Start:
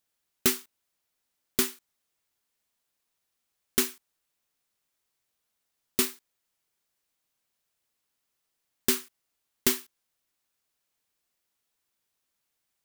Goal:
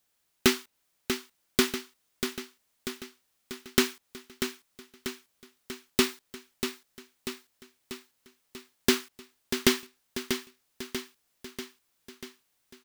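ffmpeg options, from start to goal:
ffmpeg -i in.wav -filter_complex "[0:a]acrossover=split=620|5600[link_01][link_02][link_03];[link_03]acompressor=threshold=-38dB:ratio=6[link_04];[link_01][link_02][link_04]amix=inputs=3:normalize=0,aecho=1:1:640|1280|1920|2560|3200|3840|4480:0.398|0.235|0.139|0.0818|0.0482|0.0285|0.0168,volume=5.5dB" out.wav

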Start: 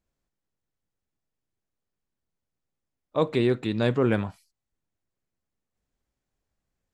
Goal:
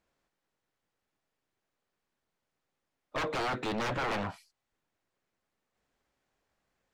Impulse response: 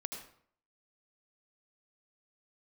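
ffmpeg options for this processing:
-filter_complex "[0:a]aeval=exprs='0.0473*(abs(mod(val(0)/0.0473+3,4)-2)-1)':channel_layout=same,asplit=2[link_01][link_02];[link_02]highpass=frequency=720:poles=1,volume=16dB,asoftclip=type=tanh:threshold=-26.5dB[link_03];[link_01][link_03]amix=inputs=2:normalize=0,lowpass=frequency=2400:poles=1,volume=-6dB"

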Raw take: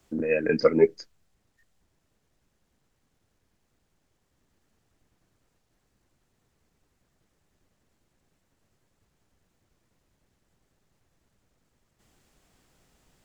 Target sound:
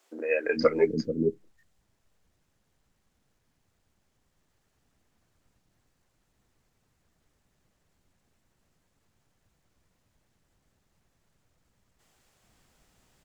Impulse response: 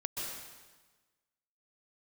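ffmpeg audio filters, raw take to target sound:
-filter_complex "[0:a]acrossover=split=360[link_01][link_02];[link_01]adelay=440[link_03];[link_03][link_02]amix=inputs=2:normalize=0"

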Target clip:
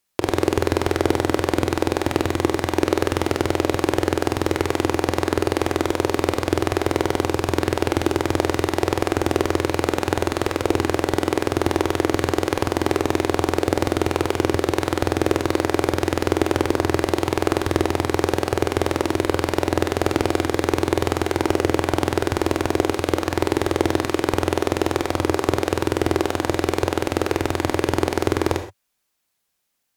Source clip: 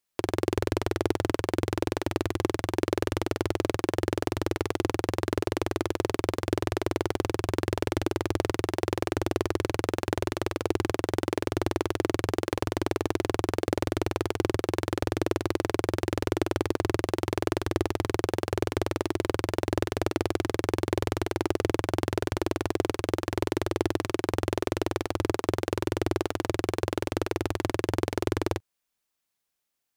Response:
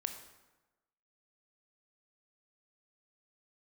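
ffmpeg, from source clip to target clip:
-filter_complex "[1:a]atrim=start_sample=2205,afade=type=out:start_time=0.17:duration=0.01,atrim=end_sample=7938,asetrate=40131,aresample=44100[link_01];[0:a][link_01]afir=irnorm=-1:irlink=0,volume=8dB"

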